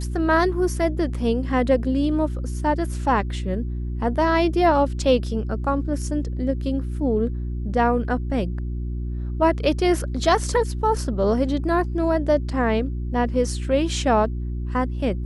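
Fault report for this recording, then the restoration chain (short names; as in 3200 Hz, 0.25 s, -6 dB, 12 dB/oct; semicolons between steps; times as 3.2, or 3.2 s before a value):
hum 60 Hz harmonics 6 -27 dBFS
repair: de-hum 60 Hz, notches 6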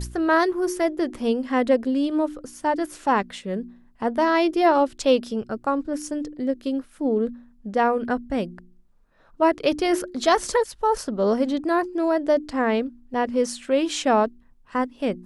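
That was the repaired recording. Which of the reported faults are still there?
none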